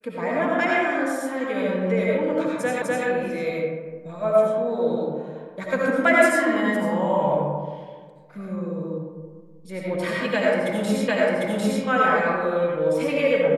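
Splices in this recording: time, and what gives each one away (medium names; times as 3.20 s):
2.82 s: repeat of the last 0.25 s
11.08 s: repeat of the last 0.75 s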